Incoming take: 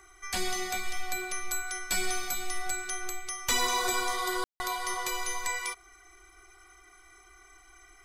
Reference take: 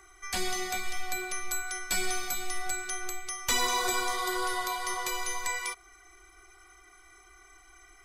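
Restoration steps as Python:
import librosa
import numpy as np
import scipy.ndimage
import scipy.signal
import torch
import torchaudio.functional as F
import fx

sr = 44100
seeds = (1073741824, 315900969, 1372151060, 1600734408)

y = fx.fix_declip(x, sr, threshold_db=-16.5)
y = fx.fix_ambience(y, sr, seeds[0], print_start_s=6.8, print_end_s=7.3, start_s=4.44, end_s=4.6)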